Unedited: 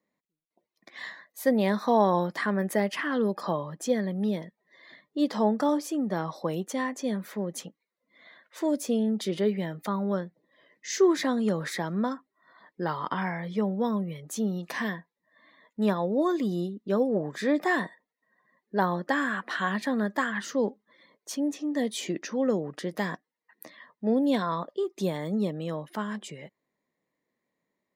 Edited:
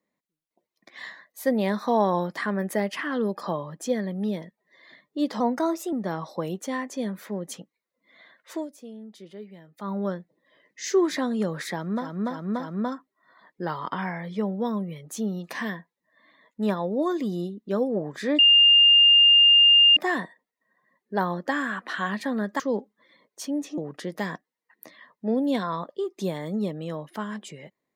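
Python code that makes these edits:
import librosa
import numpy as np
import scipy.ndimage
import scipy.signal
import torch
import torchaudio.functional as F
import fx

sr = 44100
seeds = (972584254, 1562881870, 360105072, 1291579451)

y = fx.edit(x, sr, fx.speed_span(start_s=5.4, length_s=0.59, speed=1.12),
    fx.fade_down_up(start_s=8.6, length_s=1.38, db=-15.5, fade_s=0.14),
    fx.repeat(start_s=11.85, length_s=0.29, count=4, crossfade_s=0.24),
    fx.insert_tone(at_s=17.58, length_s=1.58, hz=2810.0, db=-12.0),
    fx.cut(start_s=20.21, length_s=0.28),
    fx.cut(start_s=21.67, length_s=0.9), tone=tone)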